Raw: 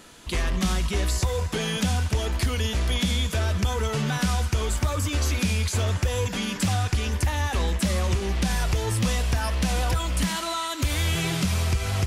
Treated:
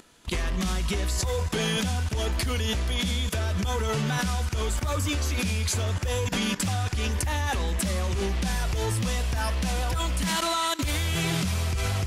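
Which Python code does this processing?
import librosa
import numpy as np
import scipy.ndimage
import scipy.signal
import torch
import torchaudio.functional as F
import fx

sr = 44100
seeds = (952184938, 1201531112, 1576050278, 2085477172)

y = fx.level_steps(x, sr, step_db=16)
y = y * librosa.db_to_amplitude(6.0)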